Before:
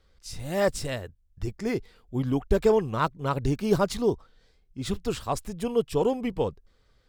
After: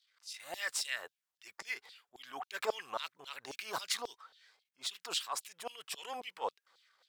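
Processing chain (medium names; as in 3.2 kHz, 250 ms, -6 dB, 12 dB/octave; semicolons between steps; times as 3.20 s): transient shaper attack -9 dB, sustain +5 dB; LFO high-pass saw down 3.7 Hz 700–4200 Hz; trim -4 dB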